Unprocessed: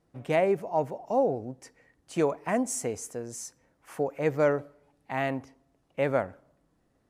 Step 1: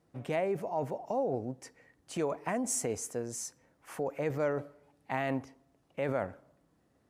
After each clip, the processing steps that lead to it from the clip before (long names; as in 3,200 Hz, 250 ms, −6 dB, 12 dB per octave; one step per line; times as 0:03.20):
high-pass filter 59 Hz
in parallel at −1 dB: compressor whose output falls as the input rises −31 dBFS, ratio −0.5
on the sum: level −8 dB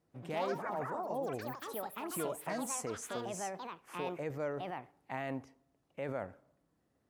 delay with pitch and tempo change per echo 117 ms, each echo +5 semitones, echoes 3
level −6.5 dB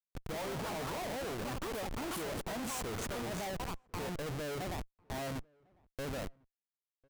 comparator with hysteresis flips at −42.5 dBFS
slap from a distant wall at 180 metres, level −29 dB
level +2 dB